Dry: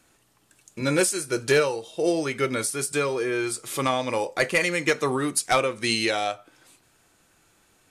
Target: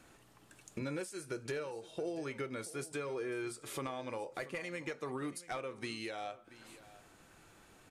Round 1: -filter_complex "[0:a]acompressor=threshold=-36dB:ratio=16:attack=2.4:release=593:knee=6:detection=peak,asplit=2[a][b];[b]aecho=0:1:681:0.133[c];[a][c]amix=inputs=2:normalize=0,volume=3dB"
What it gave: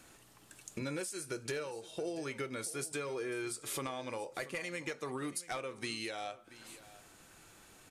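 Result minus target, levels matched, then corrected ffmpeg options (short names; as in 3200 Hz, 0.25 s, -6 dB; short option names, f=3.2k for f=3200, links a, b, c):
8000 Hz band +5.5 dB
-filter_complex "[0:a]acompressor=threshold=-36dB:ratio=16:attack=2.4:release=593:knee=6:detection=peak,highshelf=f=3.3k:g=-8,asplit=2[a][b];[b]aecho=0:1:681:0.133[c];[a][c]amix=inputs=2:normalize=0,volume=3dB"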